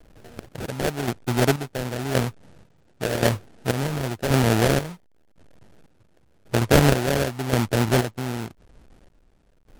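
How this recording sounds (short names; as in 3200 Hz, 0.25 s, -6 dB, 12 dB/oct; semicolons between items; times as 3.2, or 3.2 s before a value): a quantiser's noise floor 10-bit, dither none; chopped level 0.93 Hz, depth 65%, duty 45%; aliases and images of a low sample rate 1100 Hz, jitter 20%; MP3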